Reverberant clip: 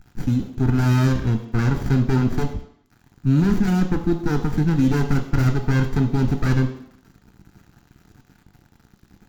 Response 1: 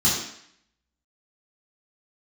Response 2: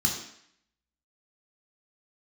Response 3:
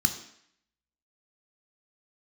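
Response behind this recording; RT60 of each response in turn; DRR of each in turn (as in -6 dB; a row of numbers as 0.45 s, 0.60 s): 3; 0.65 s, 0.65 s, 0.65 s; -8.5 dB, -1.0 dB, 6.0 dB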